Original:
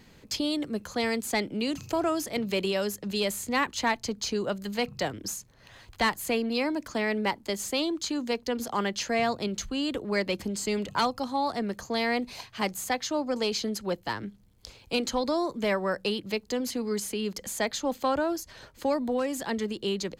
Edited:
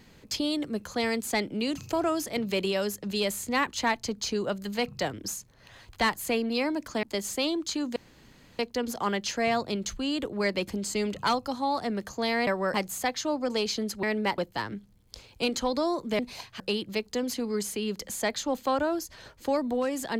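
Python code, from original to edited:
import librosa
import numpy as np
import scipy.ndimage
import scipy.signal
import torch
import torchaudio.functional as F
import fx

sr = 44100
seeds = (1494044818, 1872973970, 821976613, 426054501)

y = fx.edit(x, sr, fx.move(start_s=7.03, length_s=0.35, to_s=13.89),
    fx.insert_room_tone(at_s=8.31, length_s=0.63),
    fx.swap(start_s=12.19, length_s=0.41, other_s=15.7, other_length_s=0.27), tone=tone)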